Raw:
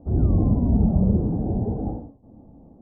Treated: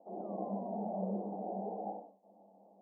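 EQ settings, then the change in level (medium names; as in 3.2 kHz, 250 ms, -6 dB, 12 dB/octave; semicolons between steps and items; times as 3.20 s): rippled Chebyshev high-pass 190 Hz, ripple 9 dB; static phaser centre 640 Hz, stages 4; 0.0 dB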